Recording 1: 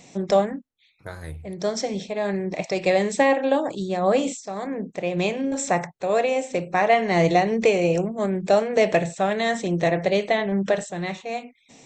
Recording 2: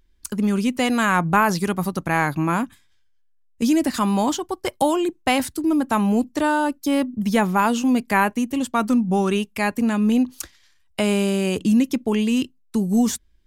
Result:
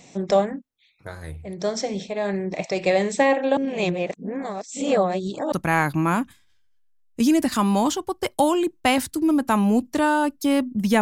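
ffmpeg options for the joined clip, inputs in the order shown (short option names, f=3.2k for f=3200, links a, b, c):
-filter_complex "[0:a]apad=whole_dur=11.01,atrim=end=11.01,asplit=2[a][b];[a]atrim=end=3.572[c];[b]atrim=start=3.568:end=5.522,asetpts=PTS-STARTPTS,areverse[d];[1:a]atrim=start=1.938:end=7.43[e];[c][d]acrossfade=d=0.004:c1=hsin:c2=hsin[f];[f][e]acrossfade=d=0.004:c1=hsin:c2=hsin"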